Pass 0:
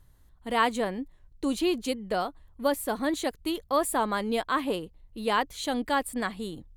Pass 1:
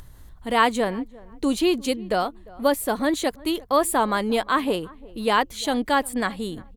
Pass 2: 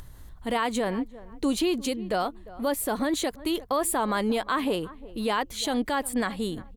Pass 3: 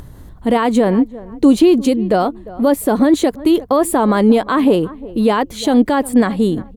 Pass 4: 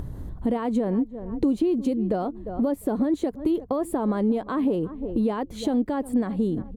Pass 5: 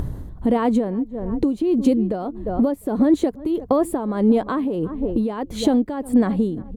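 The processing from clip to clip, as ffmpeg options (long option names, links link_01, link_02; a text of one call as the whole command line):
ffmpeg -i in.wav -filter_complex "[0:a]asplit=2[link_01][link_02];[link_02]adelay=350,lowpass=frequency=1300:poles=1,volume=-22dB,asplit=2[link_03][link_04];[link_04]adelay=350,lowpass=frequency=1300:poles=1,volume=0.22[link_05];[link_01][link_03][link_05]amix=inputs=3:normalize=0,acompressor=mode=upward:threshold=-41dB:ratio=2.5,volume=5.5dB" out.wav
ffmpeg -i in.wav -af "alimiter=limit=-17dB:level=0:latency=1:release=70" out.wav
ffmpeg -i in.wav -af "equalizer=frequency=250:width=0.31:gain=12,volume=4dB" out.wav
ffmpeg -i in.wav -af "acompressor=threshold=-26dB:ratio=3,tiltshelf=frequency=970:gain=6,volume=-3.5dB" out.wav
ffmpeg -i in.wav -af "tremolo=f=1.6:d=0.65,volume=8dB" out.wav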